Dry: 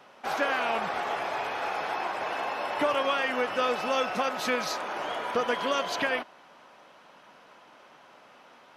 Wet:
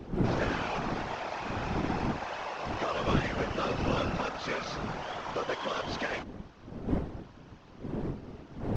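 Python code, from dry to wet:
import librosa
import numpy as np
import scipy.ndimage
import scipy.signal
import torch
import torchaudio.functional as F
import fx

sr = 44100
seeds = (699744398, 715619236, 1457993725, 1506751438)

y = fx.cvsd(x, sr, bps=32000)
y = fx.dmg_wind(y, sr, seeds[0], corner_hz=280.0, level_db=-30.0)
y = fx.whisperise(y, sr, seeds[1])
y = y * librosa.db_to_amplitude(-5.5)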